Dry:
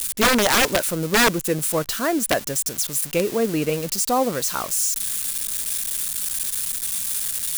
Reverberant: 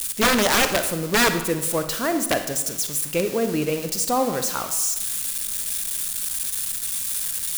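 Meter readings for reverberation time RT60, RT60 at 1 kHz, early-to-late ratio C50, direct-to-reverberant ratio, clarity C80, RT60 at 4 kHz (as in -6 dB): 1.0 s, 1.0 s, 9.0 dB, 8.0 dB, 11.0 dB, 0.75 s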